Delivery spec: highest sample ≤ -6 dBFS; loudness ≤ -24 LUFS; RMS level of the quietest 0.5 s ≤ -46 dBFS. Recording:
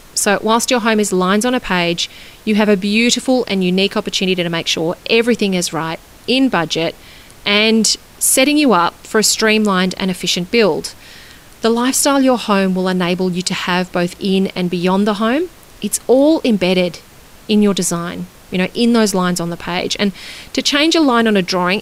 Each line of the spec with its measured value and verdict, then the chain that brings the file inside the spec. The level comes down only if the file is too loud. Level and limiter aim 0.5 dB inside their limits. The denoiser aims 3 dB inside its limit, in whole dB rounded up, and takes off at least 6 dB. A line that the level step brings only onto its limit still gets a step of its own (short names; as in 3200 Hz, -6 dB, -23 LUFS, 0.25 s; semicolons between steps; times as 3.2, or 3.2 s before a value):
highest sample -2.0 dBFS: fail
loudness -15.0 LUFS: fail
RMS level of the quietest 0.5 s -41 dBFS: fail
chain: gain -9.5 dB